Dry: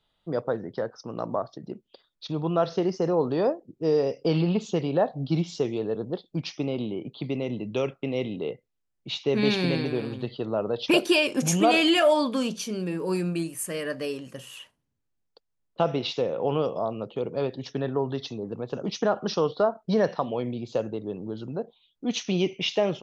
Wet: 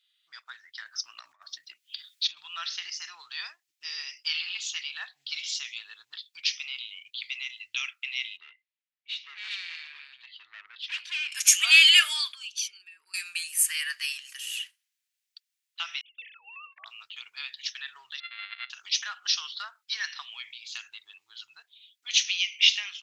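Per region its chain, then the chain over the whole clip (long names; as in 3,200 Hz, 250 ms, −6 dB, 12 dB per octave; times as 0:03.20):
0:00.84–0:02.37: hollow resonant body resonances 260/600 Hz, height 13 dB + compressor whose output falls as the input rises −26 dBFS, ratio −0.5 + one half of a high-frequency compander encoder only
0:08.37–0:11.32: tube saturation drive 26 dB, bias 0.2 + head-to-tape spacing loss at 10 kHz 29 dB
0:12.32–0:13.14: spectral envelope exaggerated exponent 1.5 + high-pass filter 290 Hz + downward compressor 5 to 1, threshold −36 dBFS
0:16.01–0:16.86: three sine waves on the formant tracks + high-pass filter 230 Hz 6 dB per octave + noise gate −34 dBFS, range −29 dB
0:18.20–0:18.70: samples sorted by size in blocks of 64 samples + Butterworth low-pass 4,200 Hz 96 dB per octave + high-shelf EQ 2,600 Hz −9 dB
whole clip: inverse Chebyshev high-pass filter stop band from 580 Hz, stop band 60 dB; automatic gain control gain up to 6 dB; level +4 dB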